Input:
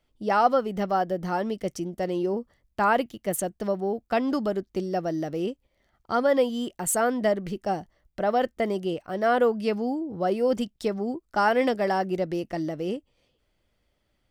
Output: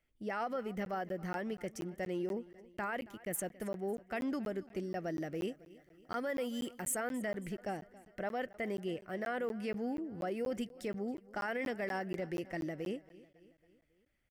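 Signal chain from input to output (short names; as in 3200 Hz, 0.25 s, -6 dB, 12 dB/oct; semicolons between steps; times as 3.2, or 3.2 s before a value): graphic EQ 1000/2000/4000 Hz -6/+10/-8 dB; limiter -20 dBFS, peak gain reduction 10 dB; high shelf 5000 Hz +3.5 dB, from 5.43 s +12 dB, from 6.82 s +4 dB; feedback echo 0.275 s, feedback 54%, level -20 dB; crackling interface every 0.24 s, samples 512, zero, from 0.85; gain -9 dB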